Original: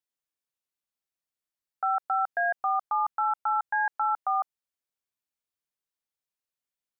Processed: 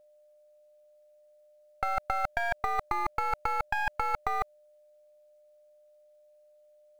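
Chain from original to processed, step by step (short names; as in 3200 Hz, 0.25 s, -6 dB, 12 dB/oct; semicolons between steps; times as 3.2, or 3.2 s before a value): half-wave gain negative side -12 dB; negative-ratio compressor -32 dBFS, ratio -0.5; whine 600 Hz -63 dBFS; short-mantissa float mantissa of 4-bit; gain +5 dB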